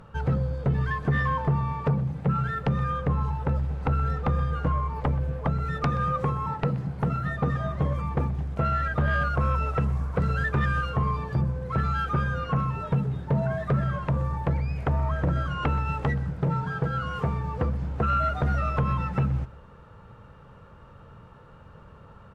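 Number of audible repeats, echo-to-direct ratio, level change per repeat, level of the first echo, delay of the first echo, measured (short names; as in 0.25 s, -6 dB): 1, -19.0 dB, no steady repeat, -19.0 dB, 0.126 s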